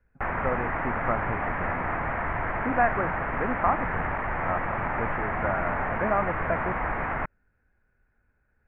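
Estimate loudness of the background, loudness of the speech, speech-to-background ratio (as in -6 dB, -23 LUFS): -29.5 LUFS, -31.5 LUFS, -2.0 dB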